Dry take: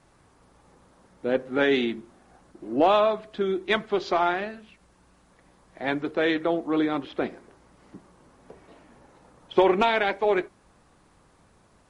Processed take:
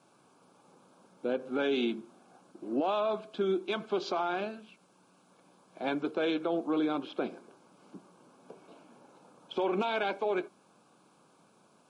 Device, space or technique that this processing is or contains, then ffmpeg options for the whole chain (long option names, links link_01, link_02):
PA system with an anti-feedback notch: -af "highpass=frequency=160:width=0.5412,highpass=frequency=160:width=1.3066,asuperstop=centerf=1900:order=4:qfactor=3.3,alimiter=limit=-19dB:level=0:latency=1:release=79,volume=-2.5dB"